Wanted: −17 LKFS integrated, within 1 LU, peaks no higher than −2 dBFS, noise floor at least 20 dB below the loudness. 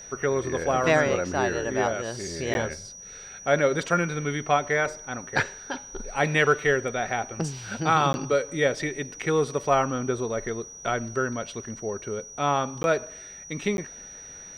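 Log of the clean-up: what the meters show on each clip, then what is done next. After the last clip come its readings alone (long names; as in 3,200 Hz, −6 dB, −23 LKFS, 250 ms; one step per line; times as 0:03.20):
number of dropouts 4; longest dropout 11 ms; interfering tone 5,800 Hz; level of the tone −41 dBFS; integrated loudness −26.0 LKFS; sample peak −9.0 dBFS; target loudness −17.0 LKFS
→ repair the gap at 0:02.54/0:08.13/0:12.83/0:13.77, 11 ms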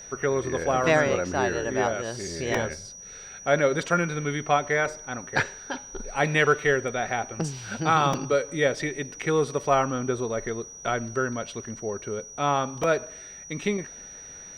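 number of dropouts 0; interfering tone 5,800 Hz; level of the tone −41 dBFS
→ notch filter 5,800 Hz, Q 30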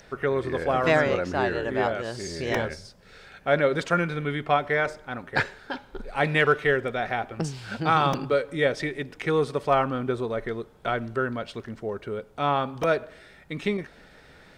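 interfering tone none found; integrated loudness −26.0 LKFS; sample peak −9.0 dBFS; target loudness −17.0 LKFS
→ level +9 dB
brickwall limiter −2 dBFS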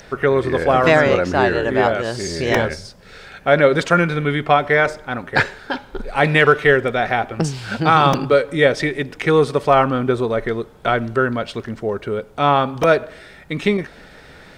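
integrated loudness −17.5 LKFS; sample peak −2.0 dBFS; background noise floor −44 dBFS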